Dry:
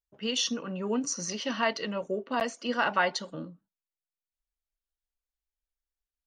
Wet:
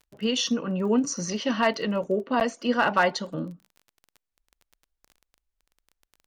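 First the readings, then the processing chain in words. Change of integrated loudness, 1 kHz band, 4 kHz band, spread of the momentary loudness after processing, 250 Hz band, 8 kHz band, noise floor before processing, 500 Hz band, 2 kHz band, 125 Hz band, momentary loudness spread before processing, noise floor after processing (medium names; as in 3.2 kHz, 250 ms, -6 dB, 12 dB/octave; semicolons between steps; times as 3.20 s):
+4.5 dB, +4.5 dB, +2.0 dB, 8 LU, +7.5 dB, +0.5 dB, under -85 dBFS, +6.0 dB, +3.0 dB, +8.0 dB, 8 LU, -85 dBFS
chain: tilt EQ -1.5 dB/octave; crackle 17 per s -43 dBFS; hard clipper -16 dBFS, distortion -28 dB; trim +4.5 dB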